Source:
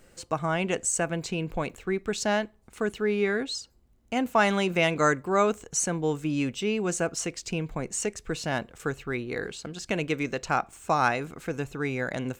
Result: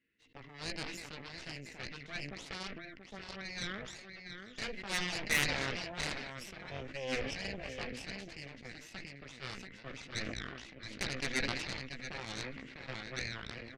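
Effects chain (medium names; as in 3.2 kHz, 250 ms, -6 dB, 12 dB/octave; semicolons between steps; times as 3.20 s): chunks repeated in reverse 378 ms, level -11.5 dB; vowel filter i; peaking EQ 250 Hz -13.5 dB 1.4 oct; band-stop 1.4 kHz, Q 5.5; tape speed -10%; low-pass 4.2 kHz 12 dB/octave; doubling 15 ms -5.5 dB; delay 683 ms -6 dB; Chebyshev shaper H 3 -18 dB, 7 -18 dB, 8 -16 dB, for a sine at -25.5 dBFS; decay stretcher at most 37 dB/s; trim +7.5 dB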